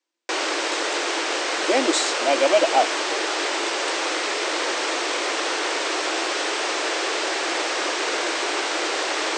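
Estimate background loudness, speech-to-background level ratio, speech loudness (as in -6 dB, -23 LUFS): -23.5 LUFS, 2.0 dB, -21.5 LUFS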